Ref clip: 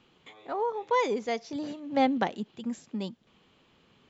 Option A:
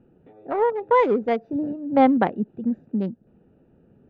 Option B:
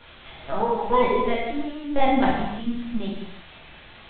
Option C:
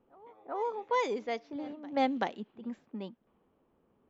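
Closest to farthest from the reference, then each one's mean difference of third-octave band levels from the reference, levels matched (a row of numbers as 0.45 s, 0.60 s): C, A, B; 3.0 dB, 6.0 dB, 9.0 dB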